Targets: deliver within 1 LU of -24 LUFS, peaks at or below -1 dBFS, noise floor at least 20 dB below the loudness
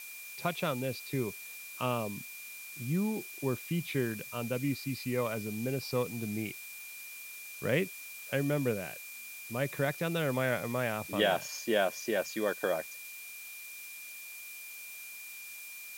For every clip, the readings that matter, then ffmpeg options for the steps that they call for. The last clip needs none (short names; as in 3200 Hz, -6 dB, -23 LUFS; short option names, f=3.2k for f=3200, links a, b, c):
steady tone 2400 Hz; tone level -46 dBFS; noise floor -46 dBFS; noise floor target -55 dBFS; loudness -35.0 LUFS; peak -14.5 dBFS; loudness target -24.0 LUFS
-> -af "bandreject=f=2.4k:w=30"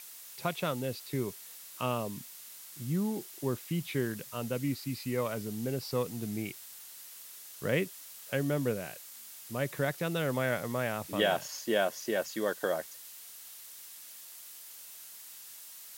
steady tone none; noise floor -49 dBFS; noise floor target -54 dBFS
-> -af "afftdn=nr=6:nf=-49"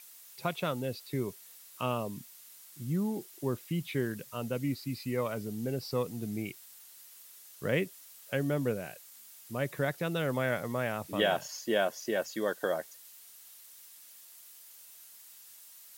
noise floor -54 dBFS; loudness -34.0 LUFS; peak -14.5 dBFS; loudness target -24.0 LUFS
-> -af "volume=10dB"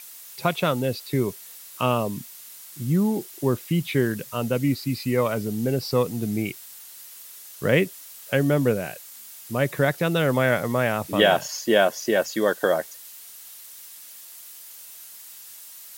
loudness -24.0 LUFS; peak -4.5 dBFS; noise floor -44 dBFS